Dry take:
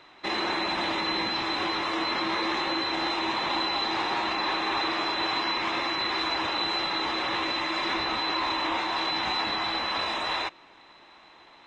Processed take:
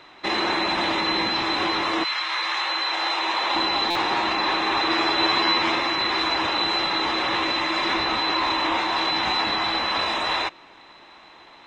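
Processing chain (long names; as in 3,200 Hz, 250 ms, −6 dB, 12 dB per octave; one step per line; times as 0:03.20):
0:02.03–0:03.54: high-pass filter 1,500 Hz → 410 Hz 12 dB per octave
0:04.89–0:05.75: double-tracking delay 12 ms −3 dB
buffer that repeats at 0:03.90, samples 256, times 8
level +5 dB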